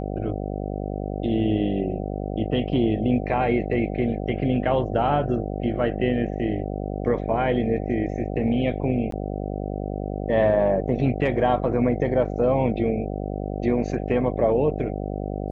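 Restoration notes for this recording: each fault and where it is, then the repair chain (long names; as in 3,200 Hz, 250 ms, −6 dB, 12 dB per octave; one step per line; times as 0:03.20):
mains buzz 50 Hz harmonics 15 −29 dBFS
0:09.11–0:09.12: drop-out 13 ms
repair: hum removal 50 Hz, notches 15
repair the gap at 0:09.11, 13 ms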